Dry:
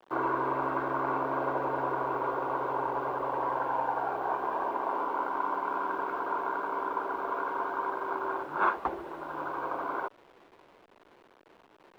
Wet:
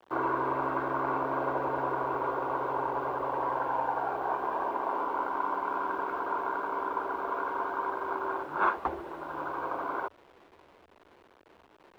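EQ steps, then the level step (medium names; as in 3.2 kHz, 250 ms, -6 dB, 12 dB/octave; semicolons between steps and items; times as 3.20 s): peaking EQ 78 Hz +13.5 dB 0.23 oct; 0.0 dB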